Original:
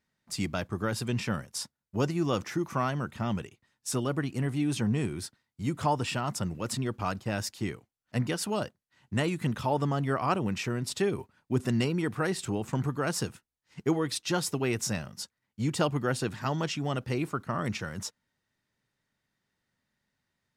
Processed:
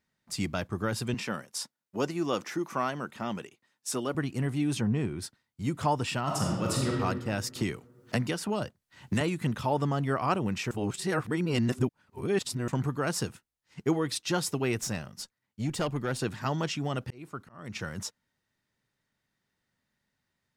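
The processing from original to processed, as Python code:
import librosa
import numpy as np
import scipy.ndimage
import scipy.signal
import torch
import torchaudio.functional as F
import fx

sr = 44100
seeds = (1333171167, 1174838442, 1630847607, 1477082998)

y = fx.highpass(x, sr, hz=230.0, slope=12, at=(1.14, 4.15))
y = fx.lowpass(y, sr, hz=2400.0, slope=6, at=(4.8, 5.21), fade=0.02)
y = fx.reverb_throw(y, sr, start_s=6.23, length_s=0.72, rt60_s=1.5, drr_db=-3.0)
y = fx.band_squash(y, sr, depth_pct=100, at=(7.55, 9.21))
y = fx.tube_stage(y, sr, drive_db=23.0, bias=0.45, at=(14.78, 16.19))
y = fx.auto_swell(y, sr, attack_ms=554.0, at=(16.87, 17.75), fade=0.02)
y = fx.edit(y, sr, fx.reverse_span(start_s=10.71, length_s=1.97), tone=tone)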